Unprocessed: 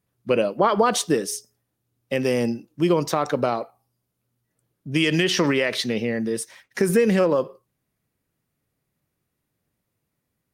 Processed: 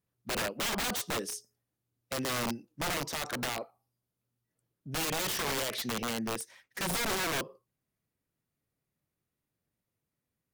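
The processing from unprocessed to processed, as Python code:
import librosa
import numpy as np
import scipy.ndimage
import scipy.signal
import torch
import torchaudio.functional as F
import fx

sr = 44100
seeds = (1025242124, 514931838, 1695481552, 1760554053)

y = (np.mod(10.0 ** (18.0 / 20.0) * x + 1.0, 2.0) - 1.0) / 10.0 ** (18.0 / 20.0)
y = y * librosa.db_to_amplitude(-9.0)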